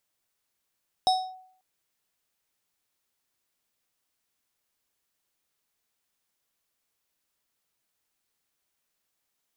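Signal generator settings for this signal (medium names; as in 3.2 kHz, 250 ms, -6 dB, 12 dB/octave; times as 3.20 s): FM tone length 0.54 s, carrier 747 Hz, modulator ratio 6.08, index 0.69, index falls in 0.28 s linear, decay 0.61 s, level -16 dB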